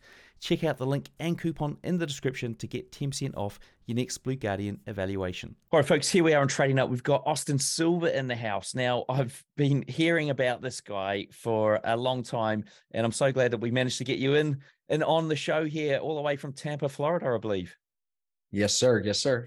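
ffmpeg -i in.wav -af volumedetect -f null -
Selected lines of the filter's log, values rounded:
mean_volume: -28.1 dB
max_volume: -11.4 dB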